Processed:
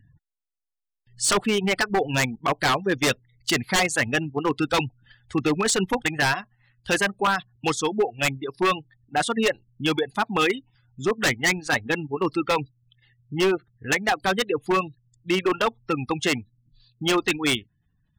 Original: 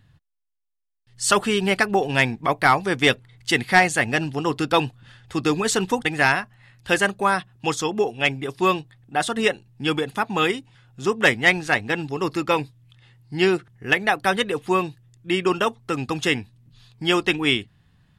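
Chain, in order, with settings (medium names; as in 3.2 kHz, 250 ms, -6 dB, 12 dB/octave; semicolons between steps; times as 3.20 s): spectral gate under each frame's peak -25 dB strong; reverb removal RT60 1.5 s; in parallel at -2.5 dB: level held to a coarse grid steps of 13 dB; on the sum: wavefolder -12 dBFS; trim -2 dB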